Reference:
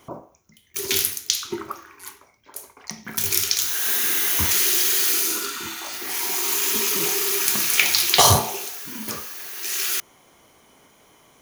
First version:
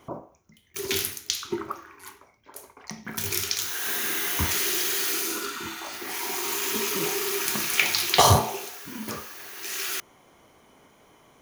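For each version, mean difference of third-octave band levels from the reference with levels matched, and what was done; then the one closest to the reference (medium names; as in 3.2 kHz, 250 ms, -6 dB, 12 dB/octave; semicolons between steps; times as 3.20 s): 3.0 dB: treble shelf 3 kHz -8 dB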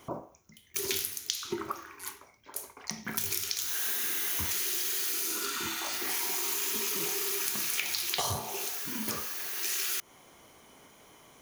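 4.0 dB: compression 8:1, threshold -27 dBFS, peak gain reduction 16.5 dB; trim -1.5 dB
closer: first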